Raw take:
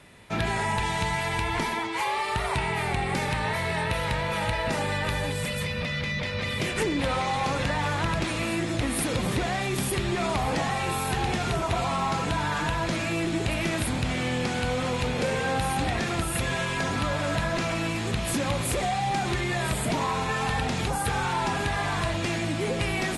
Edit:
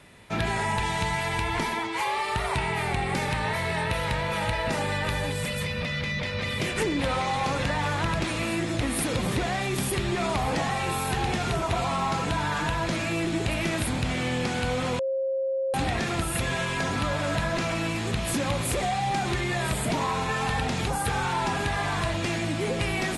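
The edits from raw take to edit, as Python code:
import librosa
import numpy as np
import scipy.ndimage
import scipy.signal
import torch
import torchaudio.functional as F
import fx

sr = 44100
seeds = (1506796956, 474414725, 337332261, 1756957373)

y = fx.edit(x, sr, fx.bleep(start_s=14.99, length_s=0.75, hz=535.0, db=-24.0), tone=tone)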